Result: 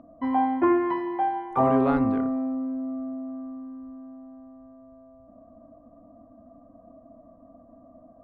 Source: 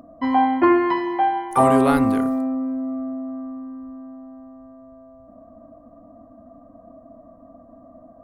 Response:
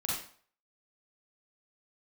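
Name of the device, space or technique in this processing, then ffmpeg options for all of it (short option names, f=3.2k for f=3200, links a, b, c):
phone in a pocket: -af "lowpass=3.4k,highshelf=f=2k:g=-10,volume=-4.5dB"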